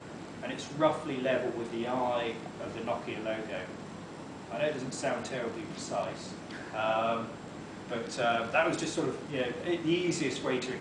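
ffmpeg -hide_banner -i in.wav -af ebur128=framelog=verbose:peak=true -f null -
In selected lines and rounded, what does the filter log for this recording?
Integrated loudness:
  I:         -32.9 LUFS
  Threshold: -43.3 LUFS
Loudness range:
  LRA:         4.5 LU
  Threshold: -53.8 LUFS
  LRA low:   -36.2 LUFS
  LRA high:  -31.7 LUFS
True peak:
  Peak:      -13.7 dBFS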